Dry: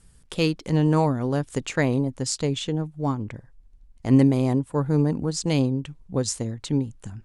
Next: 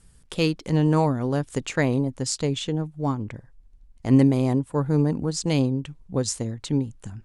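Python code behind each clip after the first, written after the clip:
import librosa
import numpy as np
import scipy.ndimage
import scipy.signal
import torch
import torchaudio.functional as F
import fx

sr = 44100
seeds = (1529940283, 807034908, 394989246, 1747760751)

y = x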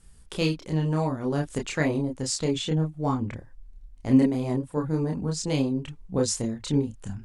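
y = fx.rider(x, sr, range_db=4, speed_s=0.5)
y = fx.chorus_voices(y, sr, voices=6, hz=0.49, base_ms=29, depth_ms=3.0, mix_pct=45)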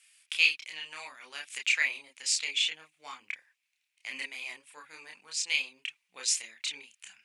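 y = fx.highpass_res(x, sr, hz=2400.0, q=4.6)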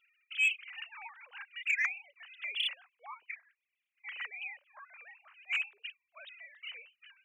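y = fx.sine_speech(x, sr)
y = 10.0 ** (-16.0 / 20.0) * np.tanh(y / 10.0 ** (-16.0 / 20.0))
y = y * librosa.db_to_amplitude(-4.0)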